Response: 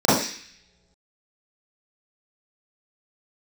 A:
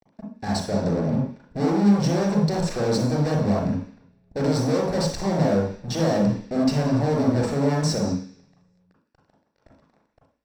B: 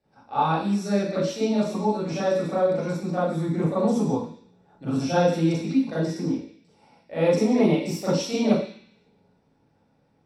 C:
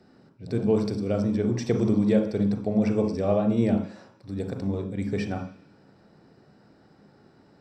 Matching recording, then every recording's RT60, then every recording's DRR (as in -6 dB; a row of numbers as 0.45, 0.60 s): B; not exponential, not exponential, not exponential; -2.5, -12.0, 4.5 dB